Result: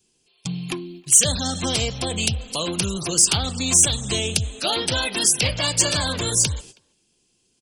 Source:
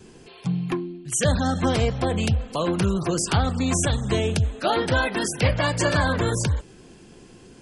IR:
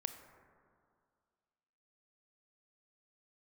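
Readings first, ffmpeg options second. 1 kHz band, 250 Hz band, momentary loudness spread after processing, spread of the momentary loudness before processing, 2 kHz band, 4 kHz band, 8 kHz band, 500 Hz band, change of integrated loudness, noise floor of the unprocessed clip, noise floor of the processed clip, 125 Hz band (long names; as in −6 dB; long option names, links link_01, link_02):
−4.5 dB, −4.0 dB, 14 LU, 5 LU, −1.5 dB, +9.0 dB, +12.5 dB, −4.5 dB, +4.0 dB, −48 dBFS, −67 dBFS, −4.5 dB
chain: -filter_complex "[0:a]agate=range=-24dB:threshold=-38dB:ratio=16:detection=peak,asplit=2[link_01][link_02];[link_02]acompressor=threshold=-31dB:ratio=6,volume=-2dB[link_03];[link_01][link_03]amix=inputs=2:normalize=0,asplit=2[link_04][link_05];[link_05]adelay=320,highpass=300,lowpass=3400,asoftclip=type=hard:threshold=-17.5dB,volume=-28dB[link_06];[link_04][link_06]amix=inputs=2:normalize=0,aexciter=amount=4.2:drive=6.8:freq=2500,volume=-6dB"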